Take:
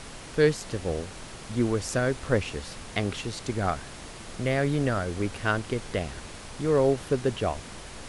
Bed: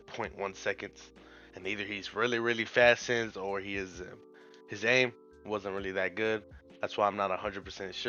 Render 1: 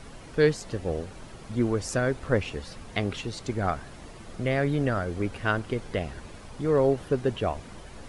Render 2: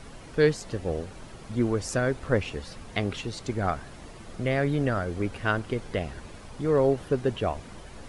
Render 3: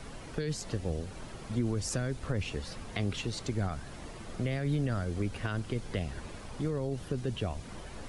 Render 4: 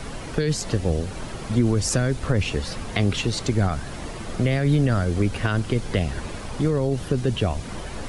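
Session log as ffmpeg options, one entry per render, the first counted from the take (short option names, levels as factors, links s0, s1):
-af "afftdn=nr=9:nf=-43"
-af anull
-filter_complex "[0:a]alimiter=limit=0.119:level=0:latency=1:release=33,acrossover=split=230|3000[s0][s1][s2];[s1]acompressor=threshold=0.0158:ratio=6[s3];[s0][s3][s2]amix=inputs=3:normalize=0"
-af "volume=3.55"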